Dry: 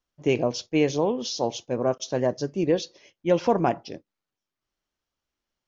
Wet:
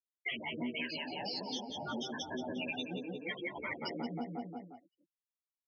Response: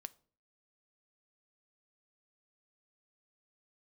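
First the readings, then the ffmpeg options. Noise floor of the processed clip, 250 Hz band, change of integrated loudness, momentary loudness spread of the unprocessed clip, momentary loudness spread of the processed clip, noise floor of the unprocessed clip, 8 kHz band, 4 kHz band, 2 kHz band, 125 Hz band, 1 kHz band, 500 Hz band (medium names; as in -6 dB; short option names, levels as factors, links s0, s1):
under -85 dBFS, -12.5 dB, -14.0 dB, 10 LU, 5 LU, under -85 dBFS, no reading, -4.5 dB, -2.5 dB, -16.5 dB, -13.0 dB, -19.5 dB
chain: -filter_complex "[0:a]afftfilt=real='re*pow(10,16/40*sin(2*PI*(1.3*log(max(b,1)*sr/1024/100)/log(2)-(-2.3)*(pts-256)/sr)))':imag='im*pow(10,16/40*sin(2*PI*(1.3*log(max(b,1)*sr/1024/100)/log(2)-(-2.3)*(pts-256)/sr)))':win_size=1024:overlap=0.75,acrossover=split=470|1300[s0][s1][s2];[s1]aeval=exprs='sgn(val(0))*max(abs(val(0))-0.00944,0)':c=same[s3];[s0][s3][s2]amix=inputs=3:normalize=0,agate=range=0.00501:threshold=0.00355:ratio=16:detection=peak,acrossover=split=700[s4][s5];[s4]aeval=exprs='val(0)*(1-1/2+1/2*cos(2*PI*1.7*n/s))':c=same[s6];[s5]aeval=exprs='val(0)*(1-1/2-1/2*cos(2*PI*1.7*n/s))':c=same[s7];[s6][s7]amix=inputs=2:normalize=0,afftfilt=real='re*gte(hypot(re,im),0.0398)':imag='im*gte(hypot(re,im),0.0398)':win_size=1024:overlap=0.75,asplit=2[s8][s9];[s9]adelay=177,lowpass=f=3200:p=1,volume=0.299,asplit=2[s10][s11];[s11]adelay=177,lowpass=f=3200:p=1,volume=0.52,asplit=2[s12][s13];[s13]adelay=177,lowpass=f=3200:p=1,volume=0.52,asplit=2[s14][s15];[s15]adelay=177,lowpass=f=3200:p=1,volume=0.52,asplit=2[s16][s17];[s17]adelay=177,lowpass=f=3200:p=1,volume=0.52,asplit=2[s18][s19];[s19]adelay=177,lowpass=f=3200:p=1,volume=0.52[s20];[s10][s12][s14][s16][s18][s20]amix=inputs=6:normalize=0[s21];[s8][s21]amix=inputs=2:normalize=0,afftfilt=real='re*lt(hypot(re,im),0.0631)':imag='im*lt(hypot(re,im),0.0631)':win_size=1024:overlap=0.75,highpass=110,equalizer=f=130:t=q:w=4:g=-7,equalizer=f=250:t=q:w=4:g=8,equalizer=f=490:t=q:w=4:g=-3,equalizer=f=1200:t=q:w=4:g=-9,equalizer=f=2100:t=q:w=4:g=6,equalizer=f=3200:t=q:w=4:g=3,lowpass=f=5100:w=0.5412,lowpass=f=5100:w=1.3066,acompressor=threshold=0.00398:ratio=6,asplit=2[s22][s23];[s23]adelay=11.5,afreqshift=0.58[s24];[s22][s24]amix=inputs=2:normalize=1,volume=5.31"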